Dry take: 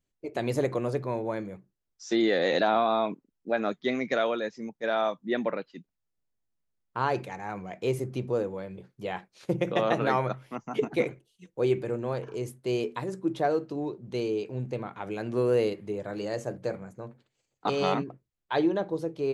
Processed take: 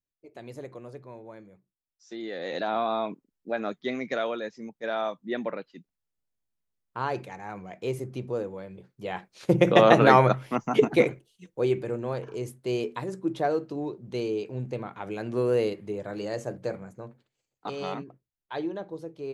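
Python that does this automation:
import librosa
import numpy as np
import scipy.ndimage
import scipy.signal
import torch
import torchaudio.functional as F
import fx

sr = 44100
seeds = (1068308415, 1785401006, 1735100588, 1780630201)

y = fx.gain(x, sr, db=fx.line((2.17, -13.5), (2.82, -2.5), (8.93, -2.5), (9.67, 9.0), (10.62, 9.0), (11.7, 0.0), (16.95, 0.0), (17.66, -7.0)))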